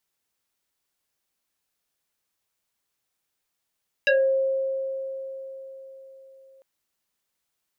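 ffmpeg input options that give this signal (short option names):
-f lavfi -i "aevalsrc='0.168*pow(10,-3*t/4.31)*sin(2*PI*535*t+2.9*pow(10,-3*t/0.3)*sin(2*PI*2.07*535*t))':d=2.55:s=44100"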